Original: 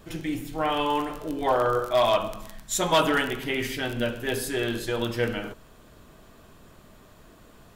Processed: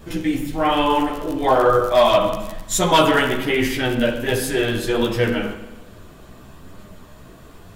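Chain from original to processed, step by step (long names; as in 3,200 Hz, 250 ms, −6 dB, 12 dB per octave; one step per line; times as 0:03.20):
multi-voice chorus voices 2, 1.1 Hz, delay 13 ms, depth 3.2 ms
low-shelf EQ 330 Hz +3.5 dB
spring reverb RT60 1.1 s, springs 38/46 ms, chirp 25 ms, DRR 9 dB
level +9 dB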